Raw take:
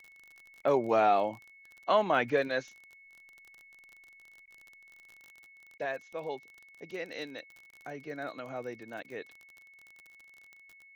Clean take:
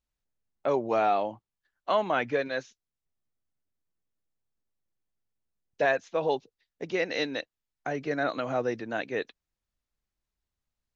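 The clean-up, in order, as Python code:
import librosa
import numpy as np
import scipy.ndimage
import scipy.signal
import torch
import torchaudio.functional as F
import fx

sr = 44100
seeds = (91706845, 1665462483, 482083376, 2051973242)

y = fx.fix_declick_ar(x, sr, threshold=6.5)
y = fx.notch(y, sr, hz=2200.0, q=30.0)
y = fx.fix_interpolate(y, sr, at_s=(0.62, 4.46, 5.78, 7.71, 9.03), length_ms=14.0)
y = fx.gain(y, sr, db=fx.steps((0.0, 0.0), (5.2, 10.5)))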